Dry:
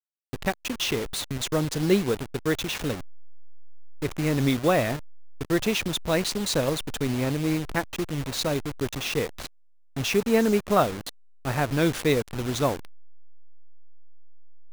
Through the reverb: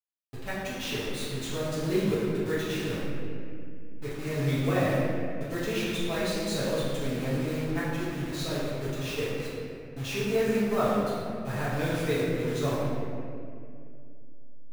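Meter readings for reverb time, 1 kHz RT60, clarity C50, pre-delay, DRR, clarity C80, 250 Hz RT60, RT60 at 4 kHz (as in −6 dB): 2.4 s, 2.0 s, −2.5 dB, 5 ms, −11.0 dB, −0.5 dB, 3.4 s, 1.4 s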